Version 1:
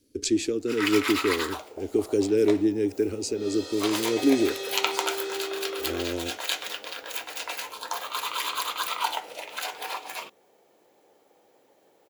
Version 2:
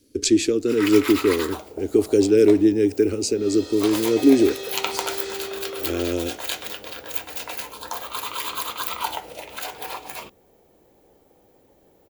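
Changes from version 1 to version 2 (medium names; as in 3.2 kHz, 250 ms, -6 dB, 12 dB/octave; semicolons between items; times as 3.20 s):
speech +6.5 dB; first sound: remove frequency weighting A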